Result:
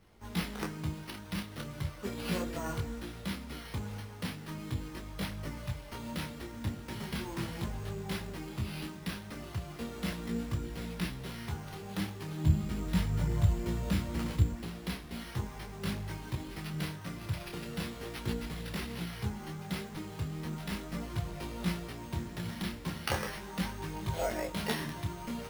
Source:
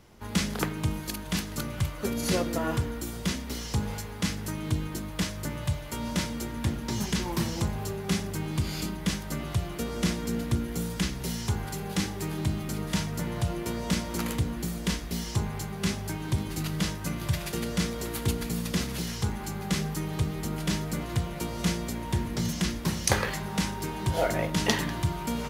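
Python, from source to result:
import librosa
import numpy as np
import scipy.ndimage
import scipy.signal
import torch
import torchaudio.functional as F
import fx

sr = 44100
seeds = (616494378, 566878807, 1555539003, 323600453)

y = fx.peak_eq(x, sr, hz=72.0, db=12.5, octaves=2.6, at=(12.44, 14.53))
y = np.repeat(y[::6], 6)[:len(y)]
y = fx.detune_double(y, sr, cents=13)
y = y * librosa.db_to_amplitude(-4.0)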